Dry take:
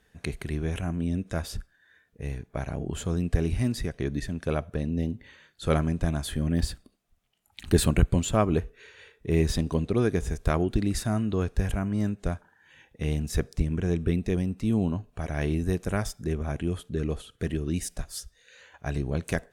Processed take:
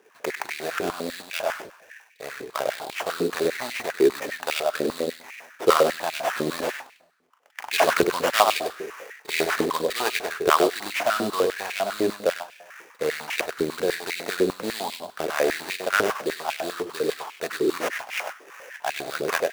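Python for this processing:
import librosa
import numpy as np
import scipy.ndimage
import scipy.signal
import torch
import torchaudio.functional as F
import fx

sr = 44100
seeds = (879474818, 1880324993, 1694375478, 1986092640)

p1 = fx.rev_plate(x, sr, seeds[0], rt60_s=0.8, hf_ratio=0.6, predelay_ms=110, drr_db=17.5)
p2 = fx.sample_hold(p1, sr, seeds[1], rate_hz=4200.0, jitter_pct=20)
p3 = p2 + fx.echo_single(p2, sr, ms=98, db=-6.5, dry=0)
p4 = fx.filter_held_highpass(p3, sr, hz=10.0, low_hz=400.0, high_hz=2300.0)
y = p4 * librosa.db_to_amplitude(5.5)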